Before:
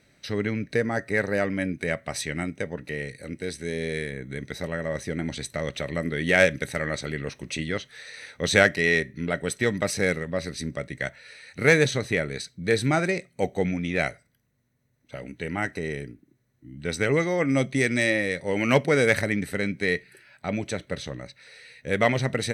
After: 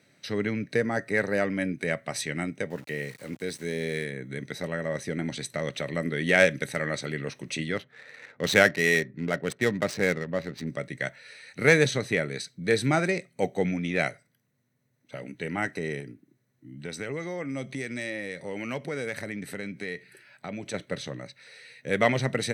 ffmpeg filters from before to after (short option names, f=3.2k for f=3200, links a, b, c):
-filter_complex "[0:a]asettb=1/sr,asplit=3[a][b][c];[a]atrim=end=2.704[d];[b]atrim=start=2.7:end=4.04,asetpts=PTS-STARTPTS,afade=t=in:d=0.004:c=qsin,afade=t=out:st=1.336:d=0.004:c=qsin,aeval=exprs='val(0)*gte(abs(val(0)),0.00531)':c=same[e];[c]atrim=start=4.036[f];[d][e]acrossfade=d=0.004:c1=hsin:c2=qsin[g];[g][f]acrossfade=d=0.004:c1=qsin:c2=hsin,asplit=3[h][i][j];[h]afade=t=out:st=7.76:d=0.02[k];[i]adynamicsmooth=sensitivity=6:basefreq=1.2k,afade=t=in:st=7.76:d=0.02,afade=t=out:st=10.66:d=0.02[l];[j]afade=t=in:st=10.66:d=0.02[m];[k][l][m]amix=inputs=3:normalize=0,asettb=1/sr,asplit=3[n][o][p];[n]atrim=end=16.004[q];[o]atrim=start=16:end=20.74,asetpts=PTS-STARTPTS,afade=t=in:d=0.004:c=qsin,afade=t=out:st=4.736:d=0.004:c=qsin,acompressor=threshold=-33dB:ratio=2.5:attack=3.2:release=140:knee=1:detection=peak[r];[p]atrim=start=20.736[s];[q][r]acrossfade=d=0.004:c1=hsin:c2=qsin[t];[t][s]acrossfade=d=0.004:c1=qsin:c2=hsin,highpass=f=110:w=0.5412,highpass=f=110:w=1.3066,volume=-1dB"